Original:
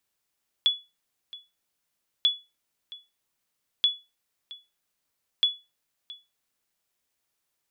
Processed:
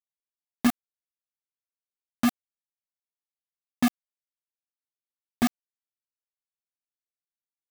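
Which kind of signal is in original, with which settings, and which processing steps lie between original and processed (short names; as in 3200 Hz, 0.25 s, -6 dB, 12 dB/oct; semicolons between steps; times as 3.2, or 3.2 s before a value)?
sonar ping 3410 Hz, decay 0.25 s, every 1.59 s, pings 4, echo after 0.67 s, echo -20 dB -13.5 dBFS
spectrum mirrored in octaves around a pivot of 910 Hz; modulation noise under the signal 28 dB; bit-crush 4-bit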